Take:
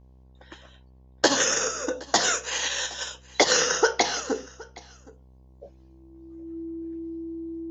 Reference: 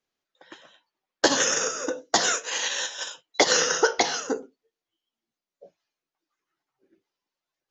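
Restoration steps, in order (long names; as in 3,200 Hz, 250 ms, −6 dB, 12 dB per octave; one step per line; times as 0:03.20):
hum removal 64.1 Hz, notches 17
notch filter 330 Hz, Q 30
echo removal 768 ms −22.5 dB
level 0 dB, from 0:04.94 −4 dB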